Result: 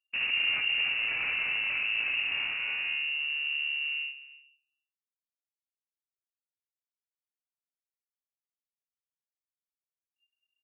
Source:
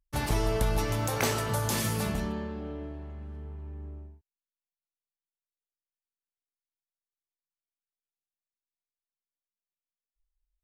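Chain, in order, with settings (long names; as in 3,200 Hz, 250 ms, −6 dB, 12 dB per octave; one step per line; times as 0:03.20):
running median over 41 samples
noise gate with hold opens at −39 dBFS
in parallel at −2.5 dB: compressor whose output falls as the input rises −35 dBFS
on the sum: hard clipping −32.5 dBFS, distortion −6 dB
on a send: single-tap delay 296 ms −18.5 dB
on the sum: rectangular room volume 190 cubic metres, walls furnished, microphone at 0.74 metres
voice inversion scrambler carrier 2,800 Hz
level +2 dB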